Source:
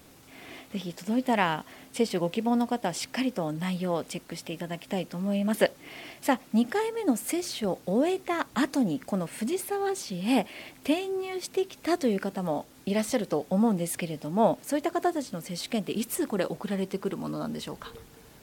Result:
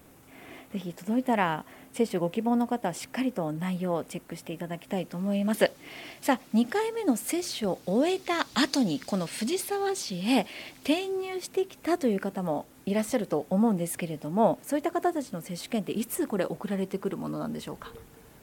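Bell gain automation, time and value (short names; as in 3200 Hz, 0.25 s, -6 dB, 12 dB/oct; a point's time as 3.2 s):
bell 4500 Hz 1.4 oct
4.72 s -8.5 dB
5.61 s +1 dB
7.68 s +1 dB
8.52 s +12.5 dB
9.2 s +12.5 dB
9.89 s +4.5 dB
10.93 s +4.5 dB
11.65 s -5.5 dB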